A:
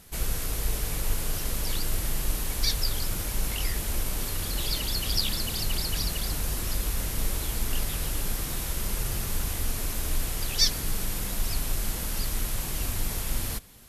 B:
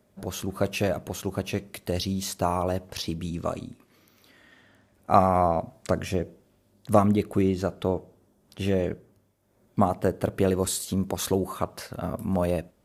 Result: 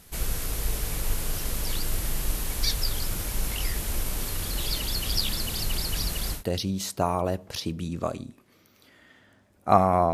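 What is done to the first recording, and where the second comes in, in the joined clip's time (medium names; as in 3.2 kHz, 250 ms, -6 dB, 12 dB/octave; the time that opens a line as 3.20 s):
A
6.37 s: go over to B from 1.79 s, crossfade 0.14 s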